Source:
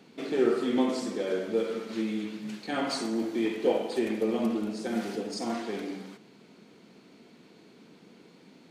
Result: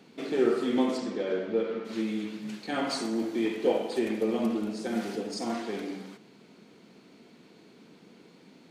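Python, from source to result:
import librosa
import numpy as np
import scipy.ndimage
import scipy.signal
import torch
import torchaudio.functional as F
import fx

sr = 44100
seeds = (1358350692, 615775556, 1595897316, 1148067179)

y = fx.lowpass(x, sr, hz=fx.line((0.97, 5000.0), (1.84, 2600.0)), slope=12, at=(0.97, 1.84), fade=0.02)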